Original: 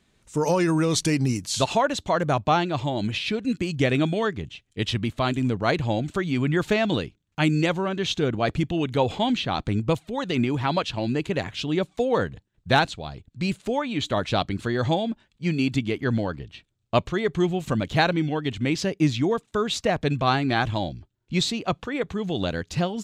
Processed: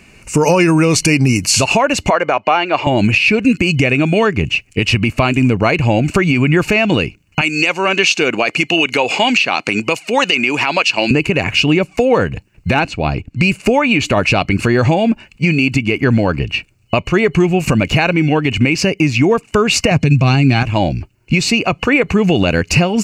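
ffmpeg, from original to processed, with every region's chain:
ffmpeg -i in.wav -filter_complex "[0:a]asettb=1/sr,asplit=3[link_01][link_02][link_03];[link_01]atrim=end=2.104[link_04];[link_02]atrim=start=2.1:end=2.87,asetpts=PTS-STARTPTS,afade=type=in:duration=0.004:curve=qsin,afade=type=out:start_time=0.766:duration=0.004:curve=qsin,highpass=480,lowpass=3900,bandreject=frequency=2600:width=13[link_05];[link_03]atrim=start=2.866[link_06];[link_04][link_05]acrossfade=duration=0.004:curve1=hsin:curve2=qsin[link_07];[link_07][link_06]acrossfade=duration=0.004:curve1=qsin:curve2=hsin,asettb=1/sr,asplit=3[link_08][link_09][link_10];[link_08]atrim=end=7.414[link_11];[link_09]atrim=start=7.41:end=11.11,asetpts=PTS-STARTPTS,afade=type=in:duration=0.004:curve=qsin,afade=type=out:start_time=3.696:duration=0.004:curve=qsin,highpass=180,lowpass=5800,aemphasis=mode=production:type=riaa[link_12];[link_10]atrim=start=11.106[link_13];[link_11][link_12]acrossfade=duration=0.004:curve1=hsin:curve2=qsin[link_14];[link_14][link_13]acrossfade=duration=0.004:curve1=qsin:curve2=hsin,asettb=1/sr,asplit=3[link_15][link_16][link_17];[link_15]atrim=end=12.744[link_18];[link_16]atrim=start=12.74:end=13.4,asetpts=PTS-STARTPTS,afade=type=in:duration=0.004:curve=qsin,afade=type=out:start_time=0.656:duration=0.004:curve=qsin,lowpass=frequency=3800:poles=1,equalizer=frequency=290:width=3.7:gain=5.5,asoftclip=type=hard:threshold=-8.5dB[link_19];[link_17]atrim=start=13.396[link_20];[link_18][link_19]acrossfade=duration=0.004:curve1=hsin:curve2=qsin[link_21];[link_21][link_20]acrossfade=duration=0.004:curve1=qsin:curve2=hsin,asettb=1/sr,asplit=3[link_22][link_23][link_24];[link_22]atrim=end=19.914[link_25];[link_23]atrim=start=19.91:end=20.63,asetpts=PTS-STARTPTS,afade=type=in:duration=0.004:curve=qsin,afade=type=out:start_time=0.716:duration=0.004:curve=qsin,highpass=110,lowpass=6400,bass=frequency=250:gain=15,treble=frequency=4000:gain=15,aecho=1:1:7.4:0.31,atrim=end_sample=31752[link_26];[link_24]atrim=start=20.626[link_27];[link_25][link_26]acrossfade=duration=0.004:curve1=hsin:curve2=qsin[link_28];[link_28][link_27]acrossfade=duration=0.004:curve1=qsin:curve2=hsin,superequalizer=12b=2.82:13b=0.282,acompressor=threshold=-28dB:ratio=6,alimiter=level_in=20.5dB:limit=-1dB:release=50:level=0:latency=1,volume=-1dB" out.wav

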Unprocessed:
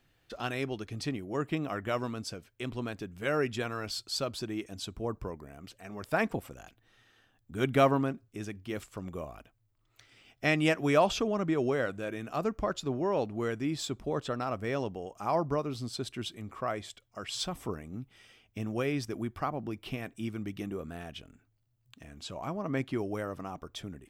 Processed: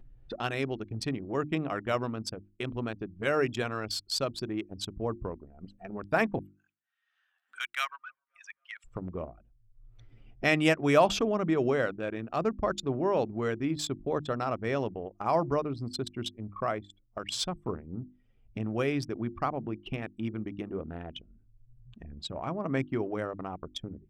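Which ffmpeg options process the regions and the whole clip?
ffmpeg -i in.wav -filter_complex "[0:a]asettb=1/sr,asplit=3[link_01][link_02][link_03];[link_01]atrim=end=6.424[link_04];[link_02]atrim=start=6.42:end=8.85,asetpts=PTS-STARTPTS,afade=type=in:duration=0.004:curve=qsin,afade=type=out:start_time=2.426:duration=0.004:curve=qsin,highpass=frequency=1400:width=0.5412,highpass=frequency=1400:width=1.3066,asplit=2[link_05][link_06];[link_06]adelay=266,lowpass=frequency=3300:poles=1,volume=-19.5dB,asplit=2[link_07][link_08];[link_08]adelay=266,lowpass=frequency=3300:poles=1,volume=0.52,asplit=2[link_09][link_10];[link_10]adelay=266,lowpass=frequency=3300:poles=1,volume=0.52,asplit=2[link_11][link_12];[link_12]adelay=266,lowpass=frequency=3300:poles=1,volume=0.52[link_13];[link_05][link_07][link_09][link_11][link_13]amix=inputs=5:normalize=0,atrim=end_sample=107163[link_14];[link_03]atrim=start=8.846[link_15];[link_04][link_14]acrossfade=duration=0.004:curve1=hsin:curve2=qsin[link_16];[link_16][link_15]acrossfade=duration=0.004:curve1=qsin:curve2=hsin,anlmdn=1,acompressor=mode=upward:threshold=-34dB:ratio=2.5,bandreject=frequency=50:width_type=h:width=6,bandreject=frequency=100:width_type=h:width=6,bandreject=frequency=150:width_type=h:width=6,bandreject=frequency=200:width_type=h:width=6,bandreject=frequency=250:width_type=h:width=6,bandreject=frequency=300:width_type=h:width=6,bandreject=frequency=350:width_type=h:width=6,volume=2.5dB" out.wav

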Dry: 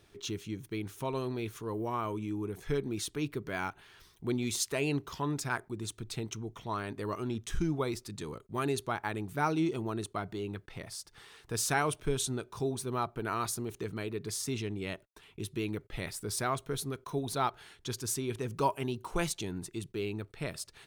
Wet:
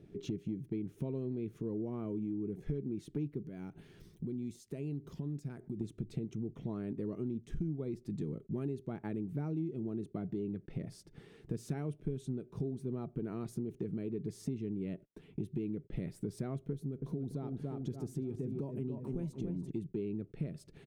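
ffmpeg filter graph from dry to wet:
ffmpeg -i in.wav -filter_complex "[0:a]asettb=1/sr,asplit=3[link_01][link_02][link_03];[link_01]atrim=end=3.434[link_04];[link_02]atrim=start=3.43:end=5.81,asetpts=PTS-STARTPTS,afade=type=in:duration=0.004:curve=qsin,afade=type=out:start_time=2.376:duration=0.004:curve=qsin,bass=frequency=250:gain=2,treble=frequency=4000:gain=8,acompressor=threshold=-48dB:ratio=3:attack=3.2:release=140:knee=1:detection=peak[link_05];[link_03]atrim=start=5.806[link_06];[link_04][link_05]acrossfade=duration=0.004:curve1=hsin:curve2=qsin[link_07];[link_07][link_06]acrossfade=duration=0.004:curve1=qsin:curve2=hsin,asettb=1/sr,asplit=3[link_08][link_09][link_10];[link_08]atrim=end=16.734[link_11];[link_09]atrim=start=16.73:end=19.71,asetpts=PTS-STARTPTS,afade=type=in:duration=0.004:curve=qsin,afade=type=out:start_time=2.976:duration=0.004:curve=qsin,equalizer=frequency=2400:width=0.52:gain=-5,asplit=2[link_12][link_13];[link_13]adelay=287,lowpass=frequency=2600:poles=1,volume=-7dB,asplit=2[link_14][link_15];[link_15]adelay=287,lowpass=frequency=2600:poles=1,volume=0.48,asplit=2[link_16][link_17];[link_17]adelay=287,lowpass=frequency=2600:poles=1,volume=0.48,asplit=2[link_18][link_19];[link_19]adelay=287,lowpass=frequency=2600:poles=1,volume=0.48,asplit=2[link_20][link_21];[link_21]adelay=287,lowpass=frequency=2600:poles=1,volume=0.48,asplit=2[link_22][link_23];[link_23]adelay=287,lowpass=frequency=2600:poles=1,volume=0.48[link_24];[link_12][link_14][link_16][link_18][link_20][link_22][link_24]amix=inputs=7:normalize=0,atrim=end_sample=131418,acompressor=threshold=-38dB:ratio=2:attack=3.2:release=140:knee=1:detection=peak[link_25];[link_10]atrim=start=19.706[link_26];[link_11][link_25]acrossfade=duration=0.004:curve1=hsin:curve2=qsin[link_27];[link_27][link_26]acrossfade=duration=0.004:curve1=qsin:curve2=hsin,firequalizer=gain_entry='entry(100,0);entry(150,12);entry(1000,-16);entry(2100,-11);entry(3800,-17);entry(11000,-19)':delay=0.05:min_phase=1,acompressor=threshold=-38dB:ratio=6,volume=3dB" out.wav

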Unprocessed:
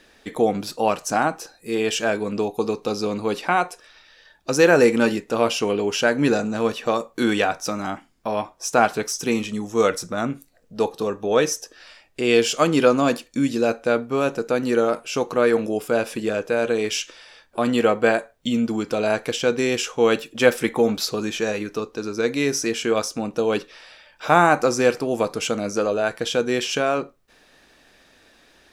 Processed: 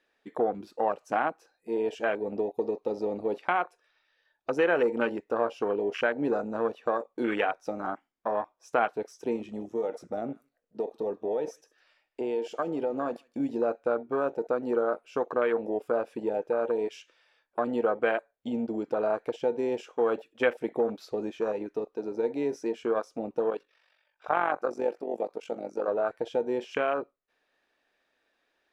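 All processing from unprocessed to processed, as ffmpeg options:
ffmpeg -i in.wav -filter_complex "[0:a]asettb=1/sr,asplit=3[link_01][link_02][link_03];[link_01]atrim=end=9.364[link_04];[link_02]atrim=start=9.36:end=13.4,asetpts=PTS-STARTPTS,afade=type=in:duration=0.004:curve=qsin,afade=type=out:start_time=4.036:duration=0.004:curve=qsin,acompressor=threshold=-21dB:ratio=4:attack=3.2:release=140:knee=1:detection=peak,aecho=1:1:156:0.0944,atrim=end_sample=178164[link_05];[link_03]atrim=start=13.396[link_06];[link_04][link_05]acrossfade=duration=0.004:curve1=hsin:curve2=qsin[link_07];[link_07][link_06]acrossfade=duration=0.004:curve1=qsin:curve2=hsin,asettb=1/sr,asplit=3[link_08][link_09][link_10];[link_08]atrim=end=23.504[link_11];[link_09]atrim=start=23.5:end=25.88,asetpts=PTS-STARTPTS,afade=type=in:duration=0.004:curve=qsin,afade=type=out:start_time=2.376:duration=0.004:curve=qsin,lowshelf=frequency=320:gain=-5,tremolo=f=47:d=0.667[link_12];[link_10]atrim=start=25.876[link_13];[link_11][link_12]acrossfade=duration=0.004:curve1=hsin:curve2=qsin[link_14];[link_14][link_13]acrossfade=duration=0.004:curve1=qsin:curve2=hsin,afwtdn=0.0631,bass=frequency=250:gain=-14,treble=frequency=4000:gain=-10,acompressor=threshold=-24dB:ratio=2,volume=-1.5dB" out.wav

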